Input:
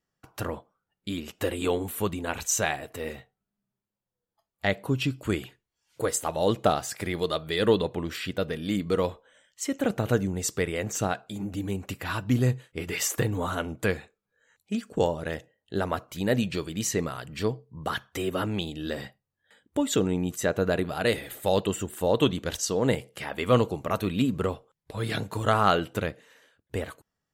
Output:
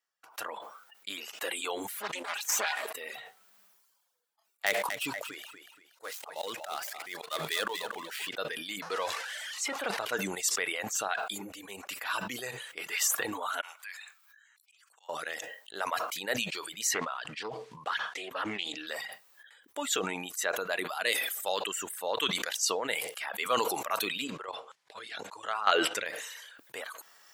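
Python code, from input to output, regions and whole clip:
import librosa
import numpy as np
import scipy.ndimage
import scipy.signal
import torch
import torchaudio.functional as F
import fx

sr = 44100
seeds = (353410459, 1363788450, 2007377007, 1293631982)

y = fx.chain(x, sr, fx.lower_of_two(delay_ms=4.9),
    fx.low_shelf(hz=230.0, db=-4.5),
    fx.doppler_dist(depth_ms=0.33), at=(1.87, 2.92))
y = fx.chain(y, sr, fx.dead_time(dead_ms=0.068),
    fx.auto_swell(attack_ms=168.0),
    fx.echo_feedback(ms=237, feedback_pct=26, wet_db=-8.5), at=(4.66, 8.29))
y = fx.chain(y, sr, fx.zero_step(step_db=-30.0),
    fx.lowpass(hz=12000.0, slope=12),
    fx.high_shelf(hz=6700.0, db=-7.0), at=(8.82, 10.17))
y = fx.chain(y, sr, fx.highpass(hz=1000.0, slope=24),
    fx.auto_swell(attack_ms=612.0), at=(13.61, 15.09))
y = fx.chain(y, sr, fx.quant_companded(bits=8),
    fx.air_absorb(metres=75.0),
    fx.doppler_dist(depth_ms=0.3), at=(16.94, 18.87))
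y = fx.chain(y, sr, fx.lowpass(hz=6600.0, slope=12),
    fx.chopper(hz=4.2, depth_pct=60, duty_pct=15), at=(24.24, 26.06))
y = fx.dereverb_blind(y, sr, rt60_s=0.9)
y = scipy.signal.sosfilt(scipy.signal.butter(2, 900.0, 'highpass', fs=sr, output='sos'), y)
y = fx.sustainer(y, sr, db_per_s=37.0)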